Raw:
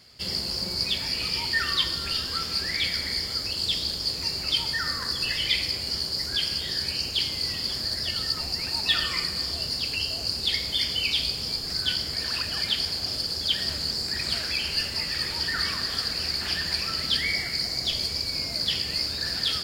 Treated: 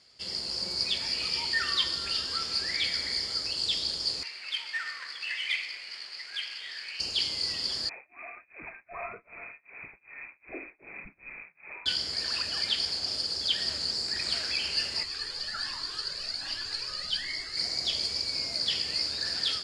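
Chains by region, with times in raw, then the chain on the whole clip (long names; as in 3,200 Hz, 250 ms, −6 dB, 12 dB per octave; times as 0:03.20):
0:04.23–0:07.00: each half-wave held at its own peak + resonant band-pass 2,200 Hz, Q 2.6
0:07.89–0:11.86: voice inversion scrambler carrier 2,500 Hz + amplitude tremolo 2.6 Hz, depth 98%
0:15.03–0:17.57: parametric band 2,300 Hz −4 dB 0.23 octaves + frequency shifter −78 Hz + flanger whose copies keep moving one way rising 1.3 Hz
whole clip: automatic gain control gain up to 3.5 dB; low-pass filter 8,900 Hz 24 dB per octave; bass and treble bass −8 dB, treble +2 dB; level −7 dB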